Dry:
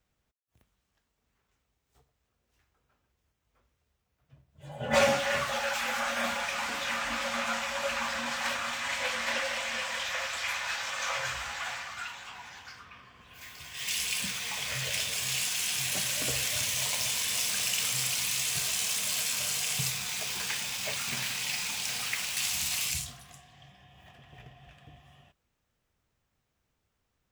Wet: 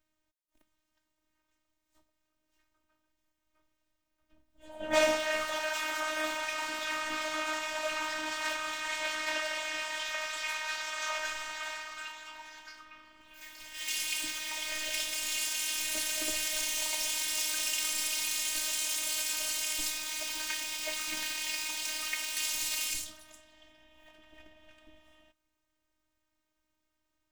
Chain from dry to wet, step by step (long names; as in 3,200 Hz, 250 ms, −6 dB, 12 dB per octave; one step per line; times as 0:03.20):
phases set to zero 311 Hz